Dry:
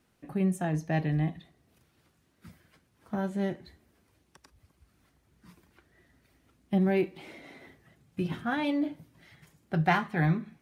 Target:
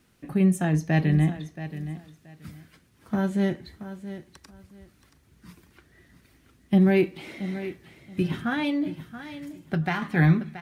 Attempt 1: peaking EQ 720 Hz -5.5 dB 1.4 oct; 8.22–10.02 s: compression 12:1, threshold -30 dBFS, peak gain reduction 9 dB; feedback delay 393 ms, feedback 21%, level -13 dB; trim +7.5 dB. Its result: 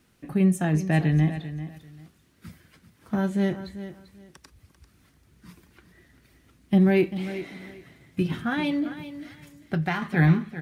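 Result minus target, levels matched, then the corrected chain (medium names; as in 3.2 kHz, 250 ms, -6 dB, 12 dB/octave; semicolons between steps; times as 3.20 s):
echo 284 ms early
peaking EQ 720 Hz -5.5 dB 1.4 oct; 8.22–10.02 s: compression 12:1, threshold -30 dBFS, peak gain reduction 9 dB; feedback delay 677 ms, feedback 21%, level -13 dB; trim +7.5 dB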